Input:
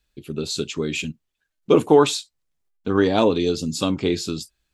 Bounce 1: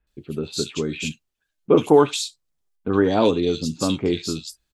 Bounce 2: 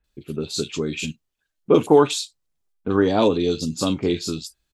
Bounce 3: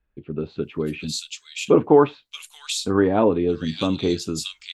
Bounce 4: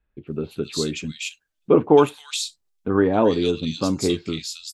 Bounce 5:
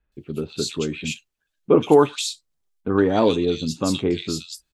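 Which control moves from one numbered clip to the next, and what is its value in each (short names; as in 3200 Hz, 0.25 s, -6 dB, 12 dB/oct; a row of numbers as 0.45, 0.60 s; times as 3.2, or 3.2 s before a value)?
bands offset in time, time: 70, 40, 630, 270, 120 ms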